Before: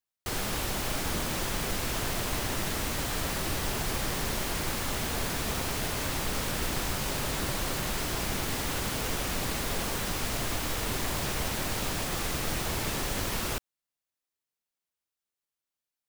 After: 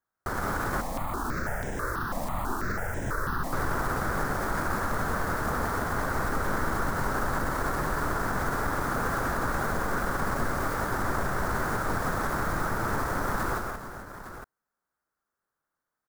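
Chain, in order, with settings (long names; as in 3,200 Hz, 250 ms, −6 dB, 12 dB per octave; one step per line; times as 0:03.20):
wavefolder on the positive side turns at −31 dBFS
high shelf with overshoot 2,000 Hz −11.5 dB, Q 3
brickwall limiter −28.5 dBFS, peak gain reduction 10 dB
multi-tap delay 129/179/429/860 ms −7.5/−6/−13/−11.5 dB
0:00.81–0:03.53: step-sequenced phaser 6.1 Hz 390–4,400 Hz
level +7.5 dB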